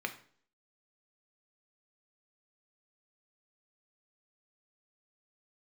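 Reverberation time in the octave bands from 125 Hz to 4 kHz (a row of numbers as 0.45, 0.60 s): 0.55, 0.60, 0.55, 0.50, 0.45, 0.45 s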